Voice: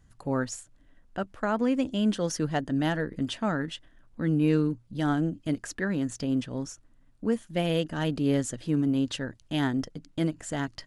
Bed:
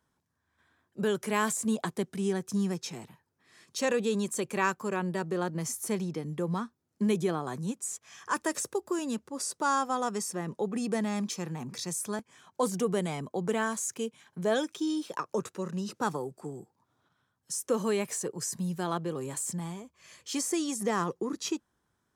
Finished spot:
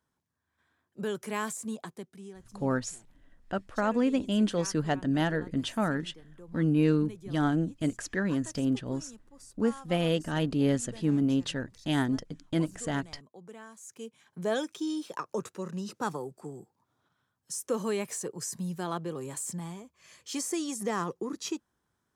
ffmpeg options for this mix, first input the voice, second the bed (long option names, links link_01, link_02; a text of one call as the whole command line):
ffmpeg -i stem1.wav -i stem2.wav -filter_complex "[0:a]adelay=2350,volume=-0.5dB[link_01];[1:a]volume=11.5dB,afade=type=out:start_time=1.35:duration=0.99:silence=0.211349,afade=type=in:start_time=13.78:duration=0.67:silence=0.158489[link_02];[link_01][link_02]amix=inputs=2:normalize=0" out.wav